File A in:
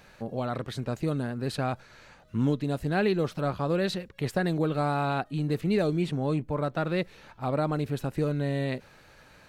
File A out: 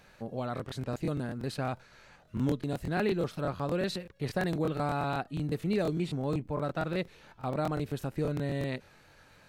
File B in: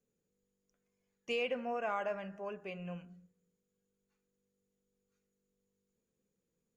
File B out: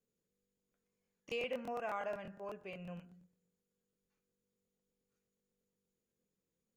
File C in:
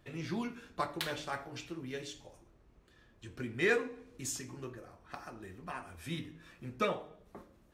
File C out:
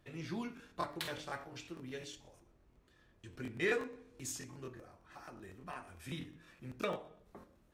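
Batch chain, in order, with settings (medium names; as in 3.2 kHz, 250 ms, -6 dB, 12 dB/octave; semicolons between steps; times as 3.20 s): crackling interface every 0.12 s, samples 1024, repeat, from 0.55 s; trim -3.5 dB; MP3 80 kbps 48 kHz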